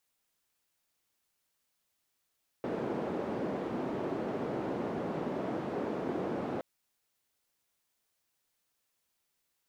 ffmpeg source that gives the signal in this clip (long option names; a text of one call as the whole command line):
ffmpeg -f lavfi -i "anoisesrc=color=white:duration=3.97:sample_rate=44100:seed=1,highpass=frequency=220,lowpass=frequency=410,volume=-10.4dB" out.wav